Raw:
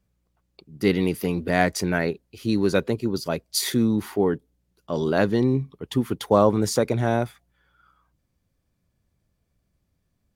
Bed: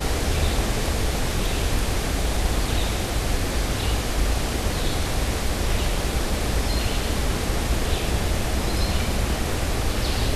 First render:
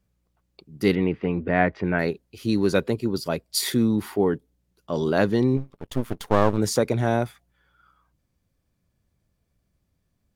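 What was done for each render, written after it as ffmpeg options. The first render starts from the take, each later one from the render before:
-filter_complex "[0:a]asettb=1/sr,asplit=3[a][b][c];[a]atrim=end=0.954[d];[b]atrim=start=0.95:end=1.99,asetpts=PTS-STARTPTS,afade=t=in:d=0.004:c=qsin,afade=t=out:st=1.036:d=0.004:c=qsin,lowpass=f=2.6k:w=0.5412,lowpass=f=2.6k:w=1.3066[e];[c]atrim=start=1.986[f];[d][e]acrossfade=d=0.004:c1=hsin:c2=qsin[g];[g][f]acrossfade=d=0.004:c1=qsin:c2=hsin,asettb=1/sr,asplit=3[h][i][j];[h]atrim=end=2.744[k];[i]atrim=start=2.74:end=4.26,asetpts=PTS-STARTPTS,afade=t=in:d=0.004:c=qsin,afade=t=out:st=1.516:d=0.004:c=qsin,bandreject=f=6.2k:w=12[l];[j]atrim=start=4.256[m];[k][l]acrossfade=d=0.004:c1=hsin:c2=qsin[n];[n][m]acrossfade=d=0.004:c1=qsin:c2=hsin,asplit=3[o][p][q];[o]afade=t=out:st=5.56:d=0.02[r];[p]aeval=exprs='max(val(0),0)':c=same,afade=t=in:st=5.56:d=0.02,afade=t=out:st=6.57:d=0.02[s];[q]afade=t=in:st=6.57:d=0.02[t];[r][s][t]amix=inputs=3:normalize=0"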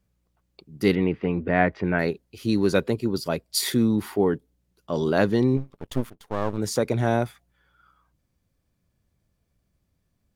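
-filter_complex "[0:a]asplit=2[a][b];[a]atrim=end=6.1,asetpts=PTS-STARTPTS,afade=t=out:st=6.096:d=0.004:c=hsin:silence=0.0944061[c];[b]atrim=start=6.1,asetpts=PTS-STARTPTS,afade=t=in:d=0.91:silence=0.0944061[d];[c][d]concat=n=2:v=0:a=1"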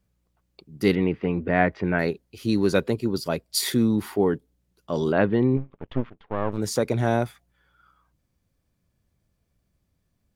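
-filter_complex "[0:a]asettb=1/sr,asplit=3[a][b][c];[a]atrim=end=5.124[d];[b]atrim=start=5.12:end=6.52,asetpts=PTS-STARTPTS,afade=t=in:d=0.004:c=qsin,afade=t=out:st=1.396:d=0.004:c=qsin,lowpass=f=2.9k:w=0.5412,lowpass=f=2.9k:w=1.3066[e];[c]atrim=start=6.516[f];[d][e]acrossfade=d=0.004:c1=hsin:c2=qsin[g];[g][f]acrossfade=d=0.004:c1=qsin:c2=hsin"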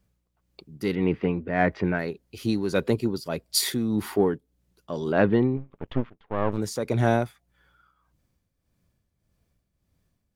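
-filter_complex "[0:a]asplit=2[a][b];[b]asoftclip=type=tanh:threshold=-18dB,volume=-10dB[c];[a][c]amix=inputs=2:normalize=0,tremolo=f=1.7:d=0.61"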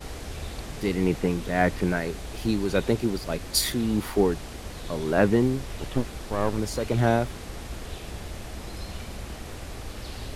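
-filter_complex "[1:a]volume=-13.5dB[a];[0:a][a]amix=inputs=2:normalize=0"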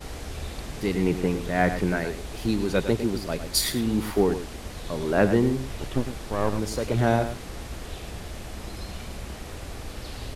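-filter_complex "[0:a]asplit=2[a][b];[b]adelay=105,volume=-10dB,highshelf=f=4k:g=-2.36[c];[a][c]amix=inputs=2:normalize=0"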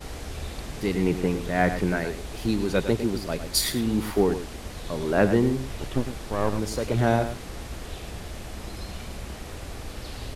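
-af anull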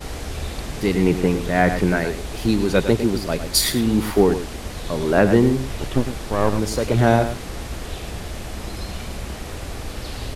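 -af "volume=6dB,alimiter=limit=-3dB:level=0:latency=1"

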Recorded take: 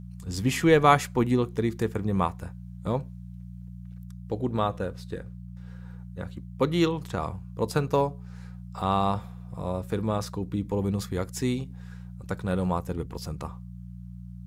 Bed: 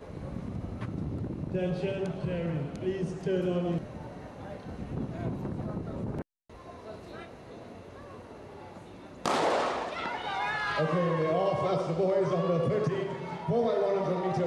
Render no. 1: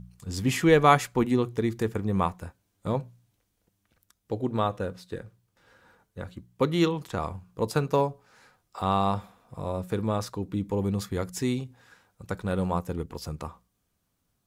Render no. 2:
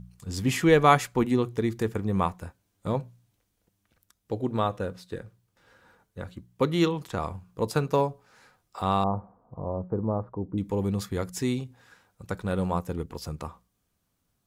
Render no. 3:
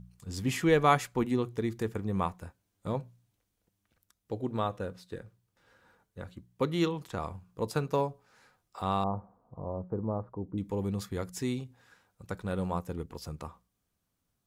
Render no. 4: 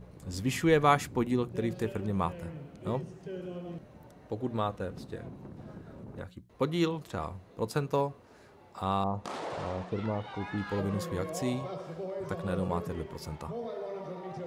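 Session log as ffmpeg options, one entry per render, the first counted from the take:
-af "bandreject=f=60:t=h:w=4,bandreject=f=120:t=h:w=4,bandreject=f=180:t=h:w=4"
-filter_complex "[0:a]asettb=1/sr,asplit=3[a][b][c];[a]atrim=end=9.044[d];[b]atrim=start=9.04:end=10.58,asetpts=PTS-STARTPTS,afade=t=in:d=0.004:c=qsin,afade=t=out:st=1.536:d=0.004:c=qsin,lowpass=f=1k:w=0.5412,lowpass=f=1k:w=1.3066[e];[c]atrim=start=10.576[f];[d][e]acrossfade=d=0.004:c1=hsin:c2=qsin[g];[g][f]acrossfade=d=0.004:c1=qsin:c2=hsin"
-af "volume=-5dB"
-filter_complex "[1:a]volume=-11dB[a];[0:a][a]amix=inputs=2:normalize=0"

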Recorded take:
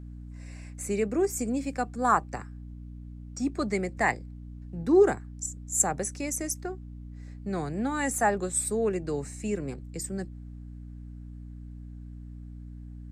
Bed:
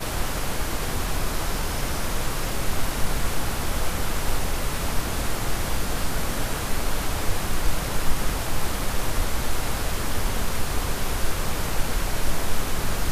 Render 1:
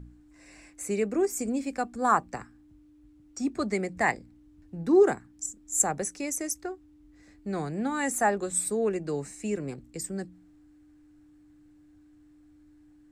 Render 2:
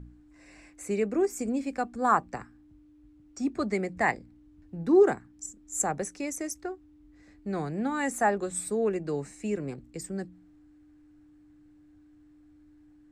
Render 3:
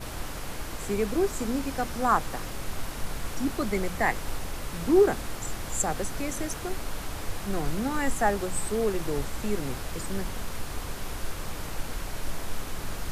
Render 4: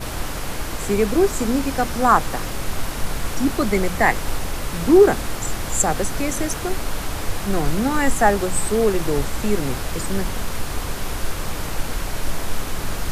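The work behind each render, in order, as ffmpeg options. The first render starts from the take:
-af "bandreject=f=60:t=h:w=4,bandreject=f=120:t=h:w=4,bandreject=f=180:t=h:w=4,bandreject=f=240:t=h:w=4"
-af "highshelf=f=5.9k:g=-8.5"
-filter_complex "[1:a]volume=-9dB[a];[0:a][a]amix=inputs=2:normalize=0"
-af "volume=8.5dB,alimiter=limit=-2dB:level=0:latency=1"

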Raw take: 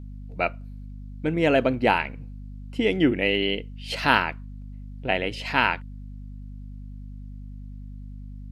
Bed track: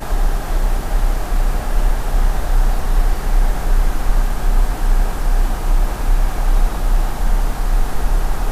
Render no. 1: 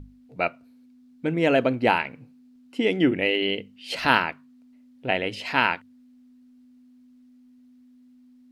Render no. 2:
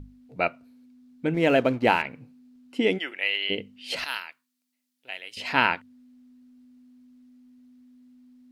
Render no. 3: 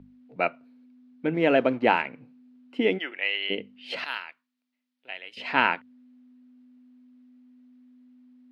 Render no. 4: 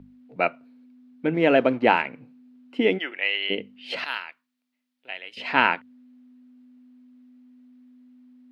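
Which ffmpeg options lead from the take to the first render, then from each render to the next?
-af "bandreject=f=50:t=h:w=6,bandreject=f=100:t=h:w=6,bandreject=f=150:t=h:w=6,bandreject=f=200:t=h:w=6"
-filter_complex "[0:a]asettb=1/sr,asplit=3[a][b][c];[a]atrim=end=1.344[d];[b]atrim=start=1.34:end=2.02,asetpts=PTS-STARTPTS,afade=t=in:d=0.004:c=qsin,afade=t=out:st=0.676:d=0.004:c=qsin,aeval=exprs='sgn(val(0))*max(abs(val(0))-0.00562,0)':c=same[e];[c]atrim=start=2.016[f];[d][e]acrossfade=d=0.004:c1=hsin:c2=qsin[g];[g][f]acrossfade=d=0.004:c1=qsin:c2=hsin,asplit=3[h][i][j];[h]afade=t=out:st=2.97:d=0.02[k];[i]highpass=1.2k,afade=t=in:st=2.97:d=0.02,afade=t=out:st=3.49:d=0.02[l];[j]afade=t=in:st=3.49:d=0.02[m];[k][l][m]amix=inputs=3:normalize=0,asettb=1/sr,asplit=3[n][o][p];[n]atrim=end=4.044[q];[o]atrim=start=4.04:end=5.37,asetpts=PTS-STARTPTS,afade=t=in:d=0.004:c=qsin,afade=t=out:st=1.326:d=0.004:c=qsin,aderivative[r];[p]atrim=start=5.366[s];[q][r]acrossfade=d=0.004:c1=hsin:c2=qsin[t];[t][s]acrossfade=d=0.004:c1=qsin:c2=hsin"
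-filter_complex "[0:a]acrossover=split=150 3800:gain=0.141 1 0.126[a][b][c];[a][b][c]amix=inputs=3:normalize=0"
-af "volume=2.5dB"

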